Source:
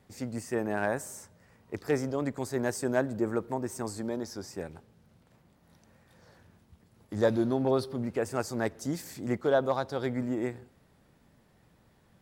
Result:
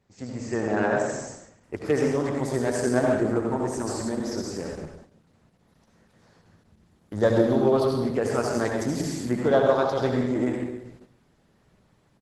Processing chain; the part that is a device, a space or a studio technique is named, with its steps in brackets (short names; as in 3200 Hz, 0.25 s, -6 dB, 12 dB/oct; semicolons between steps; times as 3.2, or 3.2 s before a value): 9.82–10.35 bell 5600 Hz +3.5 dB 0.48 oct; speakerphone in a meeting room (reverb RT60 0.95 s, pre-delay 66 ms, DRR 0 dB; speakerphone echo 0.15 s, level -29 dB; AGC gain up to 4 dB; gate -46 dBFS, range -6 dB; Opus 12 kbps 48000 Hz)